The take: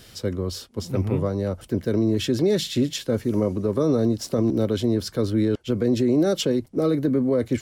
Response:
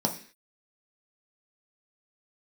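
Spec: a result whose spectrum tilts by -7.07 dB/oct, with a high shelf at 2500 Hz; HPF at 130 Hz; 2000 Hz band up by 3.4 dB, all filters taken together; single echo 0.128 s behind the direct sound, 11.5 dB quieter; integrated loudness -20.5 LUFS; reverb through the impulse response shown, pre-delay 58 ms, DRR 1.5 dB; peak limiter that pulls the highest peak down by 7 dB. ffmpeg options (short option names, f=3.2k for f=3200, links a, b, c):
-filter_complex "[0:a]highpass=130,equalizer=f=2k:t=o:g=7.5,highshelf=f=2.5k:g=-6.5,alimiter=limit=-18dB:level=0:latency=1,aecho=1:1:128:0.266,asplit=2[a][b];[1:a]atrim=start_sample=2205,adelay=58[c];[b][c]afir=irnorm=-1:irlink=0,volume=-10dB[d];[a][d]amix=inputs=2:normalize=0,volume=1dB"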